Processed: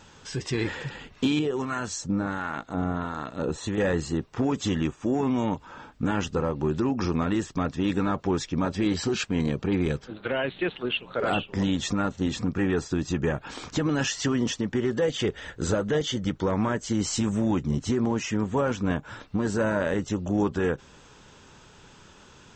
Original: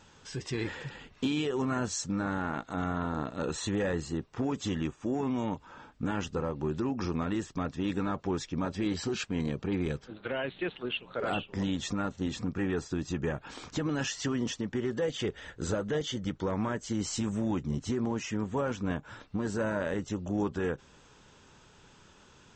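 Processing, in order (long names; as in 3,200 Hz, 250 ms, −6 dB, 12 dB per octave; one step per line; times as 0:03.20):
0:01.39–0:03.78: two-band tremolo in antiphase 1.4 Hz, depth 70%, crossover 890 Hz
level +6 dB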